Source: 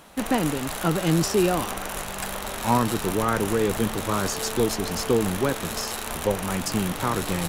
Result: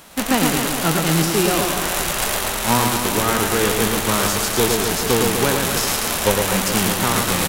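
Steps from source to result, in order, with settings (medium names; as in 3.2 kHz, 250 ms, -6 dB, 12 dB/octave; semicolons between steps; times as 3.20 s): formants flattened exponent 0.6; gain riding within 4 dB 0.5 s; on a send: reverse bouncing-ball echo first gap 110 ms, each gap 1.25×, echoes 5; on the sum: trim +4 dB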